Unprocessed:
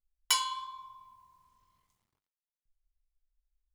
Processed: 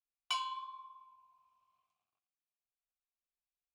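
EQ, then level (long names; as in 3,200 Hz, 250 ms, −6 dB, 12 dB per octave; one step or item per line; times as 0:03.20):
formant filter a
parametric band 570 Hz −9.5 dB 2.7 octaves
+11.0 dB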